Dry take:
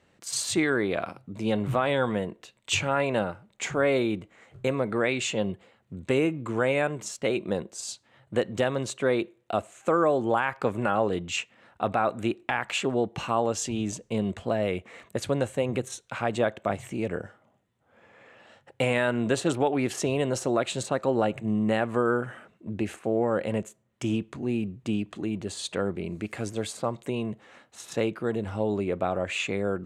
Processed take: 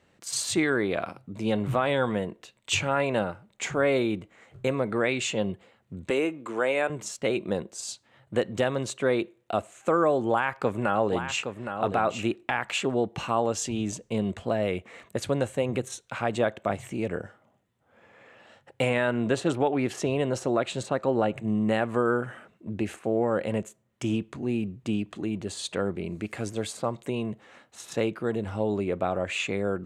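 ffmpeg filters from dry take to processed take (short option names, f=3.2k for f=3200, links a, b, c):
-filter_complex "[0:a]asettb=1/sr,asplit=3[a][b][c];[a]atrim=end=6.104[d];[b]atrim=start=6.1:end=6.9,asetpts=PTS-STARTPTS,afade=t=in:d=0.004:c=qsin,afade=t=out:st=0.796:d=0.004:c=qsin,highpass=320[e];[c]atrim=start=6.896[f];[d][e]acrossfade=d=0.004:c1=hsin:c2=qsin[g];[g][f]acrossfade=d=0.004:c1=qsin:c2=hsin,asettb=1/sr,asplit=3[h][i][j];[h]atrim=end=10.304[k];[i]atrim=start=10.3:end=12.36,asetpts=PTS-STARTPTS,afade=t=in:d=0.004:c=qsin,afade=t=out:st=2.056:d=0.004:c=qsin,aecho=1:1:816:0.398,atrim=end_sample=90846[l];[j]atrim=start=12.356[m];[k][l]acrossfade=d=0.004:c1=hsin:c2=qsin[n];[n][m]acrossfade=d=0.004:c1=qsin:c2=hsin,asettb=1/sr,asplit=3[o][p][q];[o]atrim=end=18.894[r];[p]atrim=start=18.89:end=21.36,asetpts=PTS-STARTPTS,afade=t=in:d=0.004:c=qsin,afade=t=out:st=2.466:d=0.004:c=qsin,highshelf=f=5.3k:g=-7.5[s];[q]atrim=start=21.356[t];[r][s]acrossfade=d=0.004:c1=hsin:c2=qsin[u];[u][t]acrossfade=d=0.004:c1=qsin:c2=hsin"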